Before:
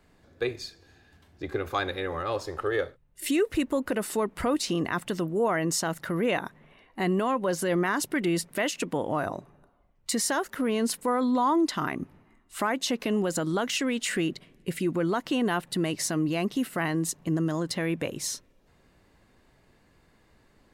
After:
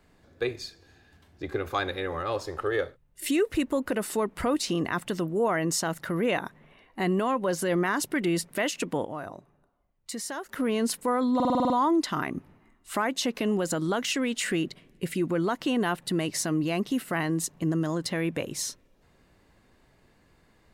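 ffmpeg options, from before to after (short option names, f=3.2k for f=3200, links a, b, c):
-filter_complex "[0:a]asplit=10[a][b][c][d][e][f][g][h][i][j];[a]atrim=end=9.052[k];[b]atrim=start=9.048:end=10.492,asetpts=PTS-STARTPTS,volume=-8dB[l];[c]atrim=start=10.488:end=11.402[m];[d]atrim=start=11.348:end=11.402[n];[e]atrim=start=11.348:end=11.402[o];[f]atrim=start=11.348:end=11.402[p];[g]atrim=start=11.348:end=11.402[q];[h]atrim=start=11.348:end=11.402[r];[i]atrim=start=11.348:end=11.402[s];[j]atrim=start=11.348[t];[k][l]acrossfade=d=0.004:c1=hsin:c2=hsin[u];[u][m]acrossfade=d=0.004:c1=hsin:c2=hsin[v];[v][n]acrossfade=d=0.004:c1=hsin:c2=hsin[w];[w][o]acrossfade=d=0.004:c1=hsin:c2=hsin[x];[x][p]acrossfade=d=0.004:c1=hsin:c2=hsin[y];[y][q]acrossfade=d=0.004:c1=hsin:c2=hsin[z];[z][r]acrossfade=d=0.004:c1=hsin:c2=hsin[aa];[aa][s]acrossfade=d=0.004:c1=hsin:c2=hsin[ab];[ab][t]acrossfade=d=0.004:c1=hsin:c2=hsin"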